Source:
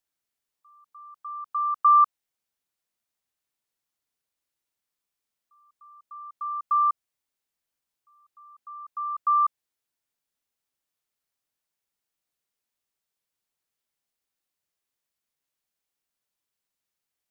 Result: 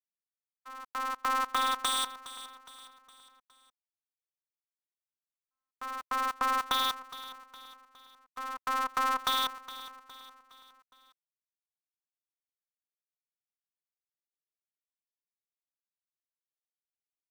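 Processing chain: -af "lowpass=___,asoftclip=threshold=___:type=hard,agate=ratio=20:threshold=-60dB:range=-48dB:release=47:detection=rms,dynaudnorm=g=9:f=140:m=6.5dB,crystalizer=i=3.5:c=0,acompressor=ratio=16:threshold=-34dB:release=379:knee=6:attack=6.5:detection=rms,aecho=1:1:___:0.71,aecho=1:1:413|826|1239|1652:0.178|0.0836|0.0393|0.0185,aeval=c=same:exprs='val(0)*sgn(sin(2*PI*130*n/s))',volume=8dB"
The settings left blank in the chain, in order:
1100, -28.5dB, 4.5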